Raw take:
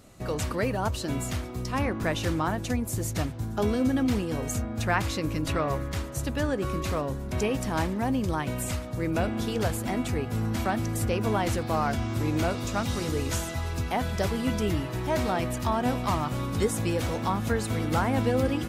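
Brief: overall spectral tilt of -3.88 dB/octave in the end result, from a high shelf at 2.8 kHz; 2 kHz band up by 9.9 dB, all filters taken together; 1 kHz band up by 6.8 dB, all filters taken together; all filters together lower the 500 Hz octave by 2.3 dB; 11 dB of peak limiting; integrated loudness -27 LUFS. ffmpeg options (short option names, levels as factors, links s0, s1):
-af "equalizer=f=500:t=o:g=-6,equalizer=f=1000:t=o:g=7.5,equalizer=f=2000:t=o:g=7.5,highshelf=f=2800:g=7.5,alimiter=limit=0.158:level=0:latency=1"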